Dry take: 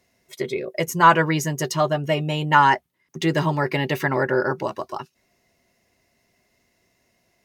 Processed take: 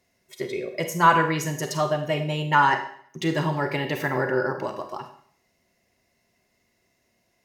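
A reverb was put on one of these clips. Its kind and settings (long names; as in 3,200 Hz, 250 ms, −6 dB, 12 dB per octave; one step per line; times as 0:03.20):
four-comb reverb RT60 0.57 s, combs from 31 ms, DRR 6 dB
level −4 dB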